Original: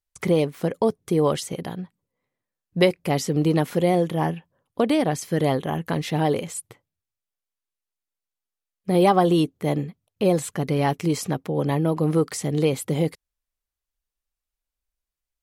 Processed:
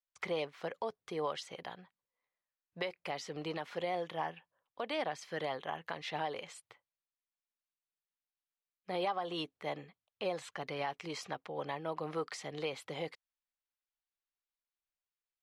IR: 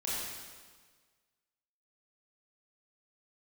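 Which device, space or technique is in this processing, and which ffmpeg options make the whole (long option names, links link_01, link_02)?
DJ mixer with the lows and highs turned down: -filter_complex "[0:a]acrossover=split=600 5300:gain=0.112 1 0.0708[link_01][link_02][link_03];[link_01][link_02][link_03]amix=inputs=3:normalize=0,alimiter=limit=-19dB:level=0:latency=1:release=211,volume=-6dB"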